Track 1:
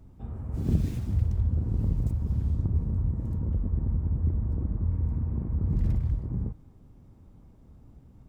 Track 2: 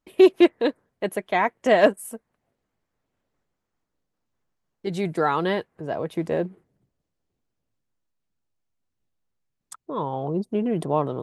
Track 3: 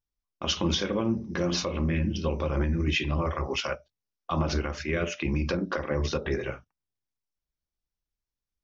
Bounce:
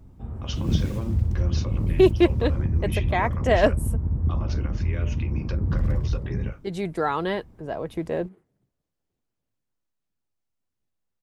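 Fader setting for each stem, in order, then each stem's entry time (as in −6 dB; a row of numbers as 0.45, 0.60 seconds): +2.5, −2.5, −8.5 decibels; 0.00, 1.80, 0.00 seconds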